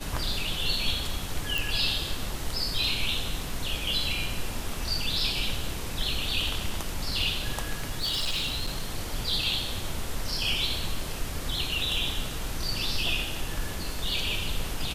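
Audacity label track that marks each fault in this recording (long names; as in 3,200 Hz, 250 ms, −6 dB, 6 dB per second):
1.580000	1.580000	click
7.750000	8.850000	clipping −24.5 dBFS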